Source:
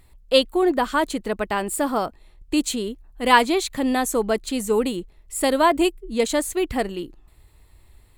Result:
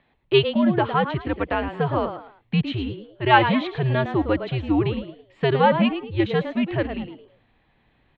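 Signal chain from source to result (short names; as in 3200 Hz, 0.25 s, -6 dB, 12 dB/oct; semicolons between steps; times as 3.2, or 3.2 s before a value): frequency-shifting echo 0.109 s, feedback 31%, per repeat +110 Hz, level -10 dB; mistuned SSB -130 Hz 190–3500 Hz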